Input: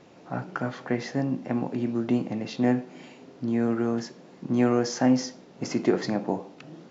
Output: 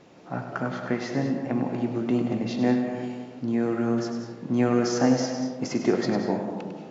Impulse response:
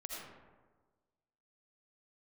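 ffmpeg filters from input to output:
-filter_complex "[0:a]asplit=2[a][b];[1:a]atrim=start_sample=2205,adelay=100[c];[b][c]afir=irnorm=-1:irlink=0,volume=-2.5dB[d];[a][d]amix=inputs=2:normalize=0"

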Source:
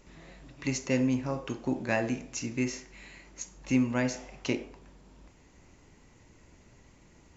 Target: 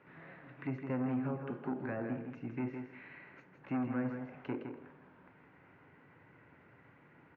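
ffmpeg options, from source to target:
-filter_complex "[0:a]asettb=1/sr,asplit=3[a][b][c];[a]atrim=end=1.074[d];[b]atrim=start=1.07:end=1.81,asetpts=PTS-STARTPTS,afade=t=in:d=0.004:c=qsin,afade=t=out:st=0.736:d=0.004:c=qsin,aecho=1:1:4.9:0.44,atrim=end_sample=32634[e];[c]atrim=start=1.806[f];[d][e]acrossfade=d=0.004:c1=hsin:c2=qsin[g];[g][f]acrossfade=d=0.004:c1=qsin:c2=hsin,acrossover=split=530[h][i];[h]asoftclip=type=tanh:threshold=-28dB[j];[i]acompressor=threshold=-49dB:ratio=6[k];[j][k]amix=inputs=2:normalize=0,highpass=f=120:w=0.5412,highpass=f=120:w=1.3066,equalizer=f=210:t=q:w=4:g=-9,equalizer=f=350:t=q:w=4:g=-4,equalizer=f=610:t=q:w=4:g=-3,equalizer=f=1.5k:t=q:w=4:g=8,lowpass=f=2.3k:w=0.5412,lowpass=f=2.3k:w=1.3066,aecho=1:1:162|324|486:0.447|0.0804|0.0145"

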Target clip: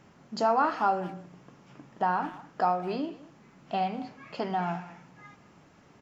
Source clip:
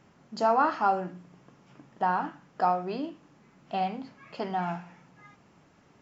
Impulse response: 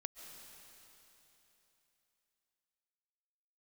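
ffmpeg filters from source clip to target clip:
-filter_complex "[0:a]asplit=2[a][b];[b]acompressor=threshold=-32dB:ratio=6,volume=-0.5dB[c];[a][c]amix=inputs=2:normalize=0,asplit=2[d][e];[e]adelay=200,highpass=300,lowpass=3.4k,asoftclip=type=hard:threshold=-20.5dB,volume=-17dB[f];[d][f]amix=inputs=2:normalize=0,volume=-3dB"

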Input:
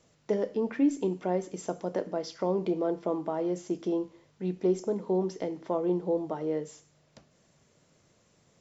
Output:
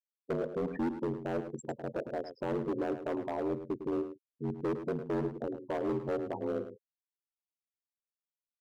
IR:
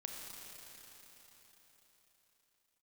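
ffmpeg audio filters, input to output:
-filter_complex "[0:a]afftfilt=real='re*gte(hypot(re,im),0.0398)':imag='im*gte(hypot(re,im),0.0398)':win_size=1024:overlap=0.75,acontrast=31,aeval=exprs='val(0)*sin(2*PI*44*n/s)':c=same,volume=23.5dB,asoftclip=hard,volume=-23.5dB,asplit=2[a][b];[b]adelay=105,volume=-10dB,highshelf=f=4k:g=-2.36[c];[a][c]amix=inputs=2:normalize=0,volume=-4.5dB"

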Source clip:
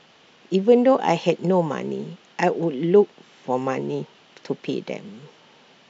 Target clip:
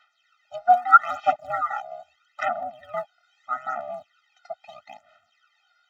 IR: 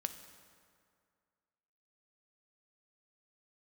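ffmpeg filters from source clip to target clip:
-filter_complex "[0:a]afwtdn=0.0398,asettb=1/sr,asplit=3[a][b][c];[a]atrim=end=0.894[d];[b]atrim=start=0.89:end=1.8,asetpts=PTS-STARTPTS,afade=t=in:d=0.004:c=qsin,afade=t=out:st=0.906:d=0.004:c=qsin,aecho=1:1:5.3:0.96,atrim=end_sample=40131[e];[c]atrim=start=1.796[f];[d][e]acrossfade=d=0.004:c1=hsin:c2=qsin[g];[g][f]acrossfade=d=0.004:c1=qsin:c2=hsin,aeval=exprs='val(0)*sin(2*PI*240*n/s)':c=same,aphaser=in_gain=1:out_gain=1:delay=1.4:decay=0.71:speed=0.78:type=sinusoidal,highpass=f=1.4k:t=q:w=2.9,afftfilt=real='re*eq(mod(floor(b*sr/1024/300),2),0)':imag='im*eq(mod(floor(b*sr/1024/300),2),0)':win_size=1024:overlap=0.75,volume=4dB"

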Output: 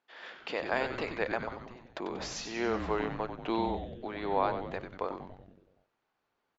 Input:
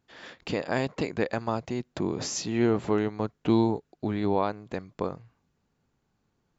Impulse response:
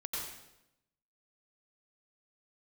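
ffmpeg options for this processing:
-filter_complex "[0:a]asplit=3[a][b][c];[a]afade=t=out:st=1.47:d=0.02[d];[b]acompressor=threshold=-42dB:ratio=6,afade=t=in:st=1.47:d=0.02,afade=t=out:st=1.92:d=0.02[e];[c]afade=t=in:st=1.92:d=0.02[f];[d][e][f]amix=inputs=3:normalize=0,highpass=560,lowpass=3.7k,asplit=9[g][h][i][j][k][l][m][n][o];[h]adelay=94,afreqshift=-140,volume=-7.5dB[p];[i]adelay=188,afreqshift=-280,volume=-11.9dB[q];[j]adelay=282,afreqshift=-420,volume=-16.4dB[r];[k]adelay=376,afreqshift=-560,volume=-20.8dB[s];[l]adelay=470,afreqshift=-700,volume=-25.2dB[t];[m]adelay=564,afreqshift=-840,volume=-29.7dB[u];[n]adelay=658,afreqshift=-980,volume=-34.1dB[v];[o]adelay=752,afreqshift=-1120,volume=-38.6dB[w];[g][p][q][r][s][t][u][v][w]amix=inputs=9:normalize=0"

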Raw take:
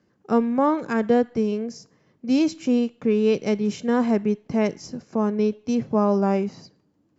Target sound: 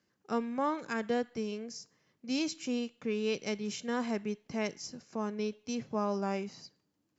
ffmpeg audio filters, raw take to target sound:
-af "tiltshelf=f=1.4k:g=-6.5,volume=-7.5dB"

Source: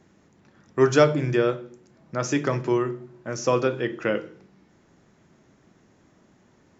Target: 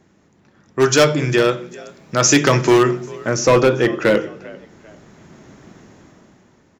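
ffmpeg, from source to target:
-filter_complex "[0:a]dynaudnorm=f=230:g=9:m=13.5dB,asplit=3[a][b][c];[b]adelay=395,afreqshift=47,volume=-23dB[d];[c]adelay=790,afreqshift=94,volume=-32.6dB[e];[a][d][e]amix=inputs=3:normalize=0,asoftclip=type=hard:threshold=-10dB,asplit=3[f][g][h];[f]afade=t=out:st=0.79:d=0.02[i];[g]highshelf=f=2.2k:g=11.5,afade=t=in:st=0.79:d=0.02,afade=t=out:st=3.28:d=0.02[j];[h]afade=t=in:st=3.28:d=0.02[k];[i][j][k]amix=inputs=3:normalize=0,volume=2.5dB"

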